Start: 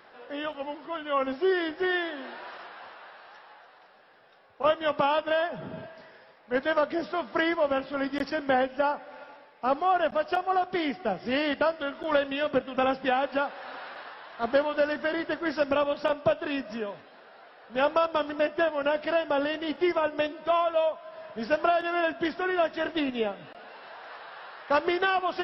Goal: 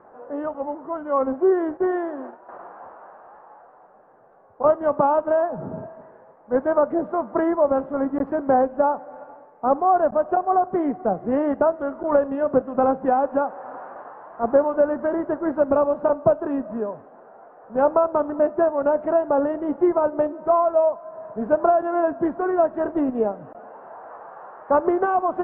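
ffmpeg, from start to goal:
-filter_complex "[0:a]lowpass=f=1.1k:w=0.5412,lowpass=f=1.1k:w=1.3066,asettb=1/sr,asplit=3[a][b][c];[a]atrim=end=1.774[d];[b]atrim=start=1.77:end=2.49,asetpts=PTS-STARTPTS,afade=t=in:d=0.004:c=qsin,afade=t=out:st=0.716:d=0.004:c=qsin,agate=range=-11dB:threshold=-41dB:ratio=16:detection=peak[e];[c]atrim=start=2.486[f];[d][e]acrossfade=d=0.004:c1=hsin:c2=qsin[g];[g][f]acrossfade=d=0.004:c1=qsin:c2=hsin,volume=7dB"

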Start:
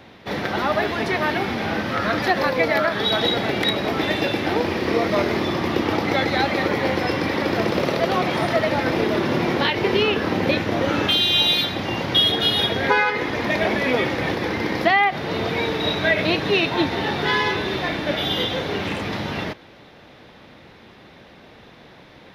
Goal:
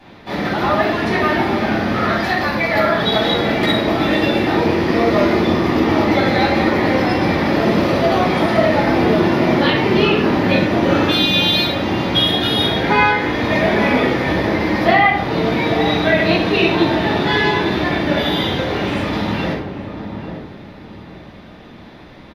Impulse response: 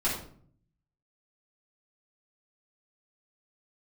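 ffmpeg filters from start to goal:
-filter_complex "[0:a]asettb=1/sr,asplit=3[a][b][c];[a]atrim=end=2.114[d];[b]atrim=start=2.11:end=2.73,asetpts=PTS-STARTPTS,afade=t=in:d=0.004:c=qsin,afade=t=out:st=0.616:d=0.004:c=qsin,equalizer=f=360:t=o:w=2:g=-9[e];[c]atrim=start=2.726[f];[d][e]acrossfade=d=0.004:c1=hsin:c2=qsin[g];[g][f]acrossfade=d=0.004:c1=qsin:c2=hsin,asplit=2[h][i];[i]adelay=841,lowpass=f=890:p=1,volume=-7dB,asplit=2[j][k];[k]adelay=841,lowpass=f=890:p=1,volume=0.35,asplit=2[l][m];[m]adelay=841,lowpass=f=890:p=1,volume=0.35,asplit=2[n][o];[o]adelay=841,lowpass=f=890:p=1,volume=0.35[p];[h][j][l][n][p]amix=inputs=5:normalize=0[q];[1:a]atrim=start_sample=2205,asetrate=40131,aresample=44100[r];[q][r]afir=irnorm=-1:irlink=0,volume=-5.5dB"

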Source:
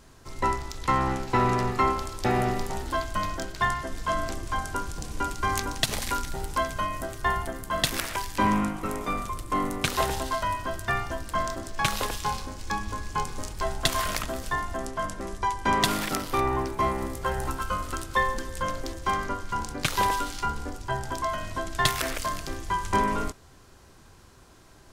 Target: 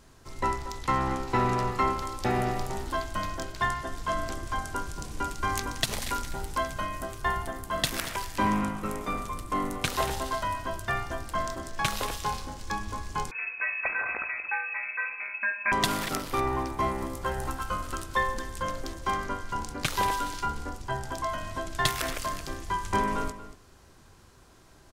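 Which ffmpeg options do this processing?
-filter_complex "[0:a]asplit=2[a][b];[b]adelay=233.2,volume=-13dB,highshelf=f=4k:g=-5.25[c];[a][c]amix=inputs=2:normalize=0,asettb=1/sr,asplit=3[d][e][f];[d]atrim=end=13.314[g];[e]atrim=start=13.31:end=15.72,asetpts=PTS-STARTPTS,afade=t=in:d=0.004:c=qsin,afade=t=out:st=2.406:d=0.004:c=qsin,lowpass=f=2.2k:t=q:w=0.5098,lowpass=f=2.2k:t=q:w=0.6013,lowpass=f=2.2k:t=q:w=0.9,lowpass=f=2.2k:t=q:w=2.563,afreqshift=-2600[h];[f]atrim=start=15.716[i];[g][h]acrossfade=d=0.004:c1=hsin:c2=qsin[j];[j][i]acrossfade=d=0.004:c1=qsin:c2=hsin,volume=-2.5dB"

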